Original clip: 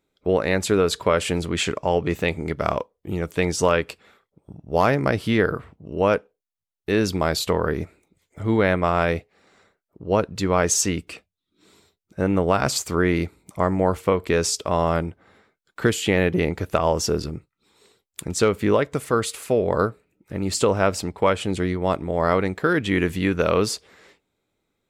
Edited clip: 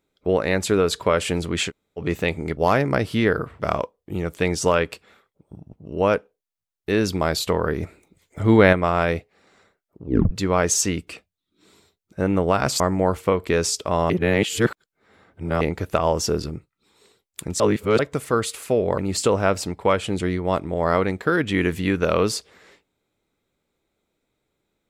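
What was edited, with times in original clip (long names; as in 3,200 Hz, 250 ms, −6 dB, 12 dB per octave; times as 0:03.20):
0:01.69–0:01.99: fill with room tone, crossfade 0.06 s
0:04.70–0:05.73: move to 0:02.57
0:07.83–0:08.73: clip gain +5.5 dB
0:10.04: tape stop 0.27 s
0:12.80–0:13.60: remove
0:14.90–0:16.41: reverse
0:18.40–0:18.79: reverse
0:19.78–0:20.35: remove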